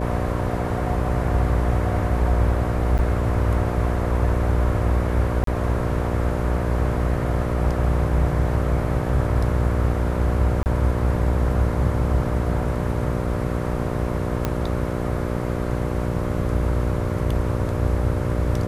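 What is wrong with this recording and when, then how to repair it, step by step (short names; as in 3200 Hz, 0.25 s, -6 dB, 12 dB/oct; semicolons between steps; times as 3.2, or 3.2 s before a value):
buzz 60 Hz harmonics 10 -26 dBFS
2.98–2.99 gap 8.9 ms
5.44–5.47 gap 33 ms
10.63–10.66 gap 29 ms
14.45 pop -9 dBFS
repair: de-click; de-hum 60 Hz, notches 10; interpolate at 2.98, 8.9 ms; interpolate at 5.44, 33 ms; interpolate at 10.63, 29 ms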